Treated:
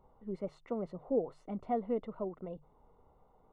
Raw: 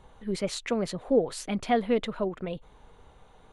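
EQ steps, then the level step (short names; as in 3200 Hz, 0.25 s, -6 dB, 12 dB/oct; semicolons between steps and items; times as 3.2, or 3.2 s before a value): polynomial smoothing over 65 samples; low shelf 130 Hz -4 dB; notches 50/100/150 Hz; -8.0 dB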